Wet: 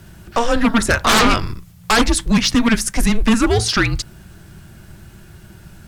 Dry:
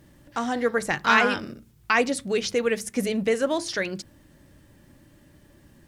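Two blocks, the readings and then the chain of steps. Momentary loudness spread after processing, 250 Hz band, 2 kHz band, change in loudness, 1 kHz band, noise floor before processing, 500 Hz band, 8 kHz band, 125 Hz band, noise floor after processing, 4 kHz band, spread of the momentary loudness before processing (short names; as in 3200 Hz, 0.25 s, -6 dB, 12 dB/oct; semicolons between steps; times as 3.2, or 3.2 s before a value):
11 LU, +12.0 dB, +5.0 dB, +8.0 dB, +7.0 dB, -56 dBFS, +2.5 dB, +13.0 dB, +17.5 dB, -44 dBFS, +12.5 dB, 12 LU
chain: sine folder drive 14 dB, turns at -4.5 dBFS; frequency shift -230 Hz; gain -4.5 dB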